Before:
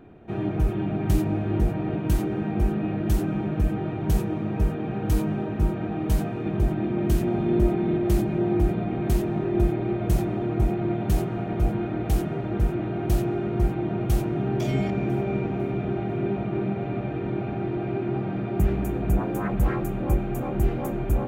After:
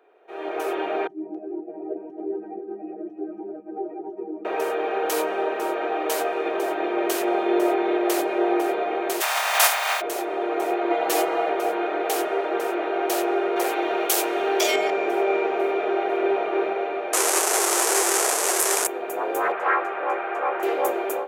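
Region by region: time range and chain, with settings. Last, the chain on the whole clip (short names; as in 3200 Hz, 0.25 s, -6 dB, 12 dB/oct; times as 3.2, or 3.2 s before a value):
1.07–4.45 spectral contrast raised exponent 2.3 + air absorption 120 m + echo 0.276 s -7.5 dB
9.2–10 spectral contrast lowered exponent 0.39 + steep high-pass 650 Hz + notch 4100 Hz, Q 28
10.9–11.5 notches 50/100/150/200/250/300/350/400/450/500 Hz + comb 6.1 ms, depth 97%
13.56–14.76 high shelf 2600 Hz +11 dB + hard clip -15.5 dBFS
17.13–18.87 delta modulation 64 kbps, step -20 dBFS + resonant high shelf 5400 Hz +11 dB, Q 1.5
19.52–20.63 Chebyshev band-pass 120–1500 Hz + tilt shelf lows -10 dB, about 770 Hz
whole clip: elliptic high-pass 420 Hz, stop band 80 dB; AGC gain up to 15 dB; gain -3.5 dB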